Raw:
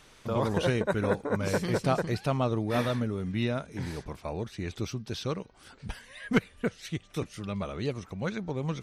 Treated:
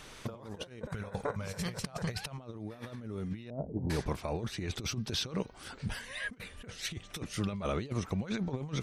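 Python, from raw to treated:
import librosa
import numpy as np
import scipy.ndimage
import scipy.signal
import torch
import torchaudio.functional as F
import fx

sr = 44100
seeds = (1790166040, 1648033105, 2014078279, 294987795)

y = fx.peak_eq(x, sr, hz=310.0, db=-14.5, octaves=0.67, at=(0.89, 2.38))
y = fx.steep_lowpass(y, sr, hz=770.0, slope=36, at=(3.5, 3.9))
y = fx.over_compress(y, sr, threshold_db=-36.0, ratio=-0.5)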